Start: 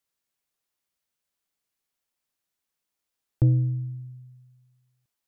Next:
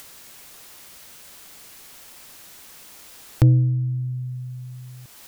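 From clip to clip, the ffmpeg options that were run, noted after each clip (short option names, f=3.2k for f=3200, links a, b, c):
-af "acompressor=mode=upward:threshold=-23dB:ratio=2.5,volume=5dB"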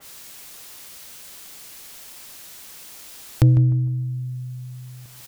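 -filter_complex "[0:a]asplit=2[a][b];[b]adelay=152,lowpass=f=1.2k:p=1,volume=-10dB,asplit=2[c][d];[d]adelay=152,lowpass=f=1.2k:p=1,volume=0.36,asplit=2[e][f];[f]adelay=152,lowpass=f=1.2k:p=1,volume=0.36,asplit=2[g][h];[h]adelay=152,lowpass=f=1.2k:p=1,volume=0.36[i];[c][e][g][i]amix=inputs=4:normalize=0[j];[a][j]amix=inputs=2:normalize=0,adynamicequalizer=threshold=0.00224:dfrequency=2400:dqfactor=0.7:tfrequency=2400:tqfactor=0.7:attack=5:release=100:ratio=0.375:range=3:mode=boostabove:tftype=highshelf"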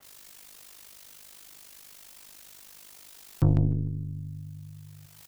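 -af "aeval=exprs='0.531*(cos(1*acos(clip(val(0)/0.531,-1,1)))-cos(1*PI/2))+0.0596*(cos(6*acos(clip(val(0)/0.531,-1,1)))-cos(6*PI/2))+0.0106*(cos(7*acos(clip(val(0)/0.531,-1,1)))-cos(7*PI/2))':c=same,aeval=exprs='val(0)*sin(2*PI*25*n/s)':c=same,volume=-4.5dB"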